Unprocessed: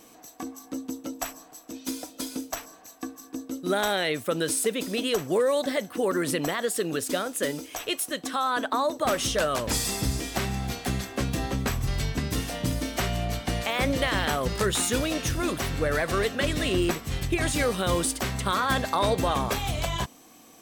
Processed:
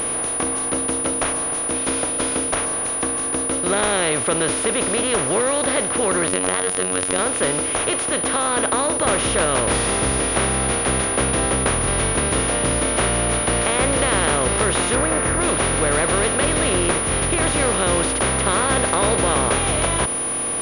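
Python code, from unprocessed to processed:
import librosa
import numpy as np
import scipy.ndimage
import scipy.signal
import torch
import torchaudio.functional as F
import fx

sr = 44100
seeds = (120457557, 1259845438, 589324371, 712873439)

y = fx.bin_compress(x, sr, power=0.4)
y = fx.robotise(y, sr, hz=91.8, at=(6.27, 7.19))
y = fx.high_shelf_res(y, sr, hz=2400.0, db=-6.5, q=1.5, at=(14.95, 15.41))
y = fx.pwm(y, sr, carrier_hz=9700.0)
y = F.gain(torch.from_numpy(y), -1.0).numpy()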